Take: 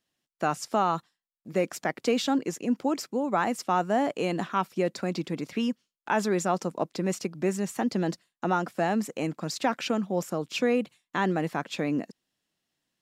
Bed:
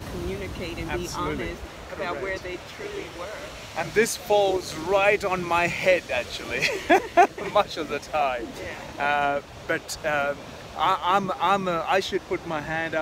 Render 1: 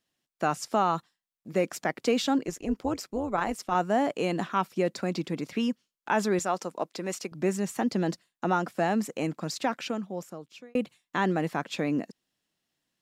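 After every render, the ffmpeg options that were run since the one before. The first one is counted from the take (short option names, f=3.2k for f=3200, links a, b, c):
-filter_complex "[0:a]asettb=1/sr,asplit=3[a][b][c];[a]atrim=end=2.464[d];[b]atrim=start=2.46:end=3.75,asetpts=PTS-STARTPTS,afade=t=in:d=0.004:c=qsin,afade=t=out:st=1.286:d=0.004:c=qsin,tremolo=f=200:d=0.621[e];[c]atrim=start=3.746[f];[d][e]acrossfade=d=0.004:c1=hsin:c2=qsin[g];[g][f]acrossfade=d=0.004:c1=qsin:c2=hsin,asettb=1/sr,asplit=3[h][i][j];[h]atrim=end=6.394[k];[i]atrim=start=6.39:end=7.32,asetpts=PTS-STARTPTS,afade=t=in:d=0.004:c=qsin,afade=t=out:st=0.926:d=0.004:c=qsin,highpass=f=480:p=1[l];[j]atrim=start=7.316[m];[k][l]acrossfade=d=0.004:c1=hsin:c2=qsin[n];[n][m]acrossfade=d=0.004:c1=qsin:c2=hsin,asplit=2[o][p];[o]atrim=end=10.75,asetpts=PTS-STARTPTS,afade=t=out:st=9.37:d=1.38[q];[p]atrim=start=10.75,asetpts=PTS-STARTPTS,afade=t=in:d=0.004:c=hsin[r];[q][r]concat=n=2:v=0:a=1"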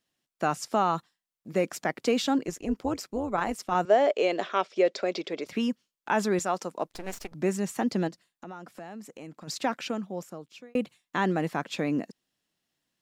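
-filter_complex "[0:a]asettb=1/sr,asplit=3[a][b][c];[a]atrim=end=3.854[d];[b]atrim=start=3.85:end=5.46,asetpts=PTS-STARTPTS,afade=t=in:d=0.004:c=qsin,afade=t=out:st=1.606:d=0.004:c=qsin,highpass=410,equalizer=f=410:t=q:w=4:g=9,equalizer=f=600:t=q:w=4:g=10,equalizer=f=960:t=q:w=4:g=-3,equalizer=f=2.2k:t=q:w=4:g=4,equalizer=f=3.4k:t=q:w=4:g=6,equalizer=f=5.2k:t=q:w=4:g=3,lowpass=f=6.8k:w=0.5412,lowpass=f=6.8k:w=1.3066[e];[c]atrim=start=5.456[f];[d][e]acrossfade=d=0.004:c1=hsin:c2=qsin[g];[g][f]acrossfade=d=0.004:c1=qsin:c2=hsin,asettb=1/sr,asplit=3[h][i][j];[h]atrim=end=6.874[k];[i]atrim=start=6.87:end=7.34,asetpts=PTS-STARTPTS,afade=t=in:d=0.004:c=qsin,afade=t=out:st=0.466:d=0.004:c=qsin,aeval=exprs='max(val(0),0)':c=same[l];[j]atrim=start=7.336[m];[k][l]acrossfade=d=0.004:c1=hsin:c2=qsin[n];[n][m]acrossfade=d=0.004:c1=qsin:c2=hsin,asplit=3[o][p][q];[o]afade=t=out:st=8.07:d=0.02[r];[p]acompressor=threshold=-46dB:ratio=2.5:attack=3.2:release=140:knee=1:detection=peak,afade=t=in:st=8.07:d=0.02,afade=t=out:st=9.47:d=0.02[s];[q]afade=t=in:st=9.47:d=0.02[t];[r][s][t]amix=inputs=3:normalize=0"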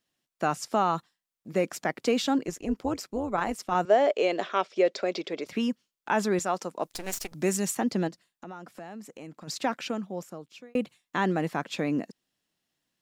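-filter_complex "[0:a]asettb=1/sr,asplit=3[a][b][c];[a]atrim=end=6.834[d];[b]atrim=start=6.83:end=7.75,asetpts=PTS-STARTPTS,afade=t=in:d=0.004:c=qsin,afade=t=out:st=0.916:d=0.004:c=qsin,highshelf=f=3.6k:g=11.5[e];[c]atrim=start=7.746[f];[d][e]acrossfade=d=0.004:c1=hsin:c2=qsin[g];[g][f]acrossfade=d=0.004:c1=qsin:c2=hsin"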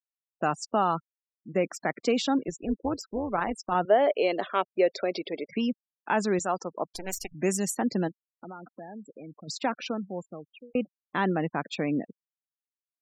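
-af "afftfilt=real='re*gte(hypot(re,im),0.0141)':imag='im*gte(hypot(re,im),0.0141)':win_size=1024:overlap=0.75"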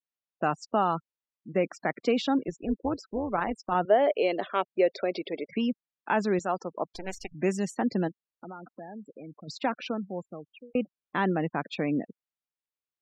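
-af "lowpass=4.1k,adynamicequalizer=threshold=0.0126:dfrequency=1200:dqfactor=1.3:tfrequency=1200:tqfactor=1.3:attack=5:release=100:ratio=0.375:range=2.5:mode=cutabove:tftype=bell"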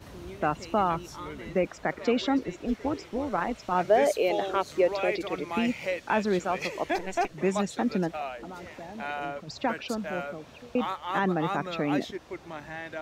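-filter_complex "[1:a]volume=-11dB[a];[0:a][a]amix=inputs=2:normalize=0"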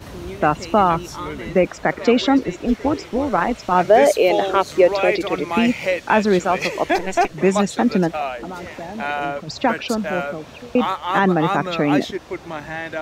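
-af "volume=10dB,alimiter=limit=-2dB:level=0:latency=1"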